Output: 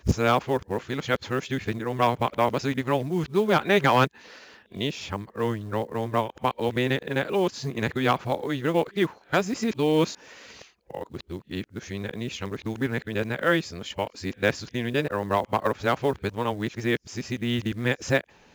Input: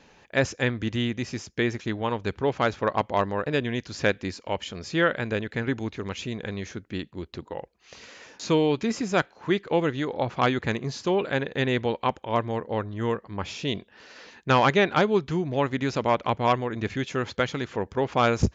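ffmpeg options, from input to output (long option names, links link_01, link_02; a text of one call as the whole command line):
ffmpeg -i in.wav -af "areverse,acrusher=bits=7:mode=log:mix=0:aa=0.000001" out.wav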